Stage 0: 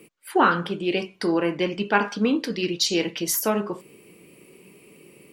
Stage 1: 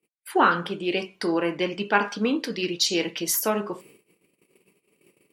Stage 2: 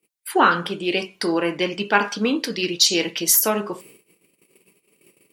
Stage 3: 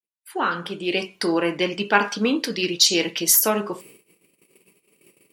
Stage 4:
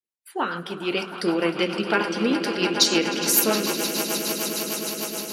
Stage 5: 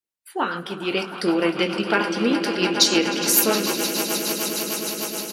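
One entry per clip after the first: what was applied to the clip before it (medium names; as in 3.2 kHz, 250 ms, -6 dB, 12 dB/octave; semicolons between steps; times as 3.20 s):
bass shelf 270 Hz -5.5 dB; gate -49 dBFS, range -32 dB
treble shelf 3.6 kHz +7 dB; trim +2.5 dB
fade-in on the opening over 1.06 s
echo with a slow build-up 103 ms, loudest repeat 8, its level -14 dB; rotary cabinet horn 6.7 Hz
doubling 21 ms -12 dB; trim +1.5 dB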